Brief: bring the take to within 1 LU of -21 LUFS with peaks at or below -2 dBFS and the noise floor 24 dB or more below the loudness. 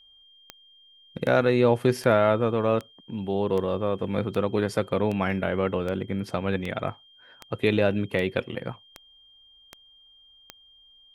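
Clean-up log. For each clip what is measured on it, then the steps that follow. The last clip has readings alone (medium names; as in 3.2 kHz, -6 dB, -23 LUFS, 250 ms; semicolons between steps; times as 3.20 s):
clicks found 14; steady tone 3.2 kHz; tone level -53 dBFS; loudness -25.5 LUFS; peak level -7.0 dBFS; loudness target -21.0 LUFS
-> de-click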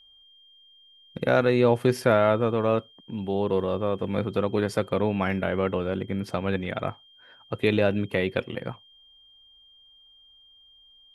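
clicks found 0; steady tone 3.2 kHz; tone level -53 dBFS
-> band-stop 3.2 kHz, Q 30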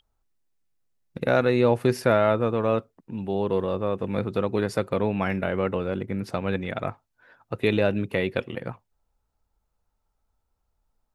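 steady tone not found; loudness -25.5 LUFS; peak level -7.0 dBFS; loudness target -21.0 LUFS
-> trim +4.5 dB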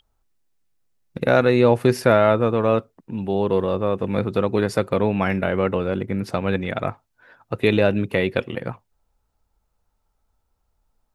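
loudness -21.0 LUFS; peak level -2.5 dBFS; noise floor -72 dBFS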